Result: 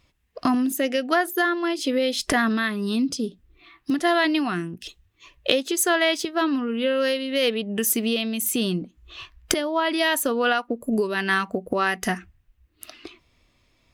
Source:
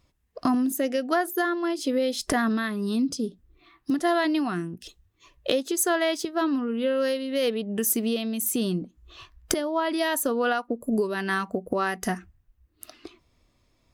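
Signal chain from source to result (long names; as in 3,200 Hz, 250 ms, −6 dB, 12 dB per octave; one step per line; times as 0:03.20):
parametric band 2,600 Hz +7.5 dB 1.4 octaves
level +1.5 dB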